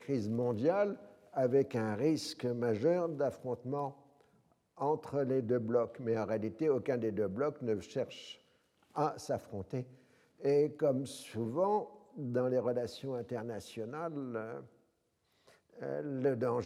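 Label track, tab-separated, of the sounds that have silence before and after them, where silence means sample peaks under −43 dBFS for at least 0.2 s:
1.340000	3.910000	sound
4.800000	8.320000	sound
8.960000	9.830000	sound
10.420000	11.870000	sound
12.170000	14.610000	sound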